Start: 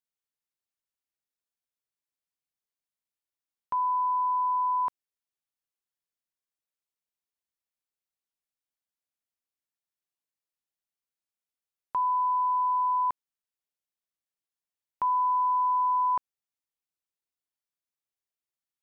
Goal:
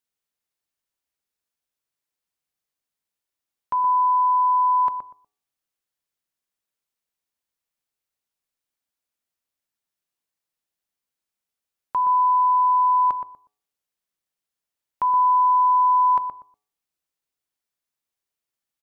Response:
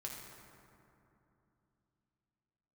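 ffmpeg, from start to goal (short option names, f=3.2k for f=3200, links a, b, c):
-filter_complex "[0:a]bandreject=f=105.1:t=h:w=4,bandreject=f=210.2:t=h:w=4,bandreject=f=315.3:t=h:w=4,bandreject=f=420.4:t=h:w=4,bandreject=f=525.5:t=h:w=4,bandreject=f=630.6:t=h:w=4,bandreject=f=735.7:t=h:w=4,bandreject=f=840.8:t=h:w=4,bandreject=f=945.9:t=h:w=4,bandreject=f=1.051k:t=h:w=4,bandreject=f=1.1561k:t=h:w=4,asplit=2[a][b];[b]adelay=121,lowpass=f=1.1k:p=1,volume=-6.5dB,asplit=2[c][d];[d]adelay=121,lowpass=f=1.1k:p=1,volume=0.24,asplit=2[e][f];[f]adelay=121,lowpass=f=1.1k:p=1,volume=0.24[g];[c][e][g]amix=inputs=3:normalize=0[h];[a][h]amix=inputs=2:normalize=0,volume=5.5dB"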